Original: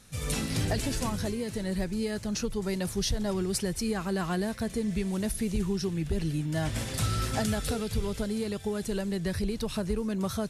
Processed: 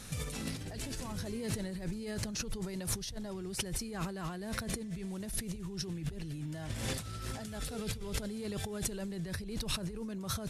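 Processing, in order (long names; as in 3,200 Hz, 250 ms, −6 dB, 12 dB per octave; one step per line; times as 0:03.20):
compressor whose output falls as the input rises −39 dBFS, ratio −1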